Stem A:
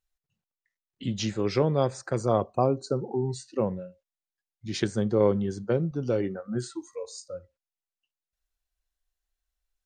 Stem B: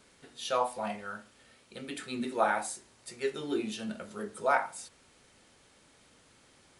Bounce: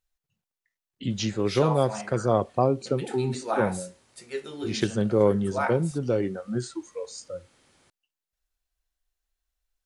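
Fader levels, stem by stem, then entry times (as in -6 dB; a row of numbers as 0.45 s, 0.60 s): +1.5 dB, -1.0 dB; 0.00 s, 1.10 s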